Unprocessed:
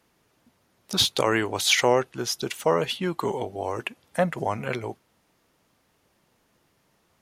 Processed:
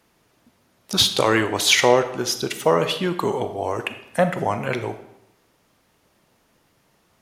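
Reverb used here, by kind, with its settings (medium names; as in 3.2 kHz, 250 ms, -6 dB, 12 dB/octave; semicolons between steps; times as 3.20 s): algorithmic reverb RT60 0.84 s, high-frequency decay 0.8×, pre-delay 0 ms, DRR 9 dB; trim +4 dB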